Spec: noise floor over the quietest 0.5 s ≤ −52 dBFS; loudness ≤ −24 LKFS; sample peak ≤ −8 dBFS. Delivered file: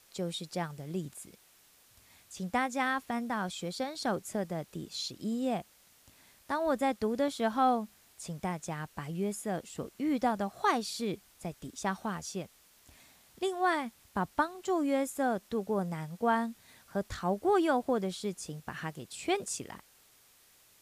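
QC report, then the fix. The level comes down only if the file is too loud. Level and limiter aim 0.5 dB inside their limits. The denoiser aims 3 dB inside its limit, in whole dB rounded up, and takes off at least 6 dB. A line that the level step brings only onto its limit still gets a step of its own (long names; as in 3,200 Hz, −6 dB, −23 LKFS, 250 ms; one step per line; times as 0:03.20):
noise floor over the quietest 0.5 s −63 dBFS: in spec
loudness −33.5 LKFS: in spec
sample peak −15.0 dBFS: in spec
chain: no processing needed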